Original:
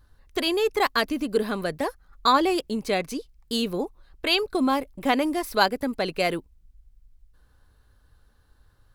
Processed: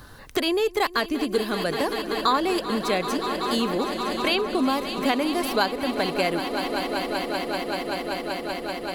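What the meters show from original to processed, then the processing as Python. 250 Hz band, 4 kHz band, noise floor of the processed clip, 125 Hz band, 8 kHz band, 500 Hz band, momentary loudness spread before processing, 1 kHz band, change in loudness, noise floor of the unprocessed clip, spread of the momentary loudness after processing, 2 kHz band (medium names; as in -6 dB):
+1.5 dB, +1.0 dB, -42 dBFS, +2.0 dB, +2.5 dB, +2.0 dB, 10 LU, +1.0 dB, 0.0 dB, -61 dBFS, 6 LU, +1.5 dB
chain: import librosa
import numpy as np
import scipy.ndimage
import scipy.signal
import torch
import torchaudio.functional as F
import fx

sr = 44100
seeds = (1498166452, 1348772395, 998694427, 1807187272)

y = fx.echo_swell(x, sr, ms=192, loudest=5, wet_db=-15)
y = fx.band_squash(y, sr, depth_pct=70)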